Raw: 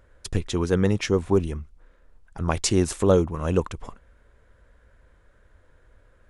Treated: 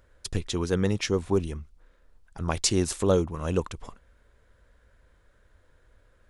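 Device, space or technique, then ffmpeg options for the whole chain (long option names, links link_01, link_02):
presence and air boost: -af "equalizer=frequency=4300:width_type=o:width=1.2:gain=4.5,highshelf=frequency=9200:gain=6.5,volume=-4dB"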